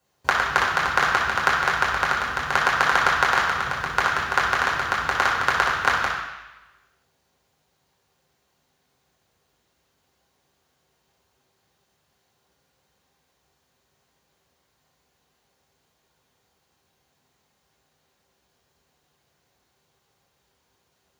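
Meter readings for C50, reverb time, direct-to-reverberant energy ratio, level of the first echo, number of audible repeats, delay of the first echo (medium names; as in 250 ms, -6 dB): 3.0 dB, 1.0 s, -5.0 dB, no echo, no echo, no echo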